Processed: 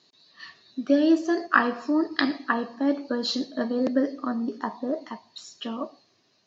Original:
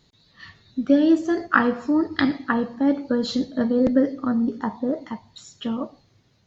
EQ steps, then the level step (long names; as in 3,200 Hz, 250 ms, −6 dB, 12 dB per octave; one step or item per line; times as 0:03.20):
loudspeaker in its box 480–5,800 Hz, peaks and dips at 500 Hz −9 dB, 850 Hz −9 dB, 1,400 Hz −9 dB, 2,100 Hz −9 dB, 3,400 Hz −8 dB
+6.0 dB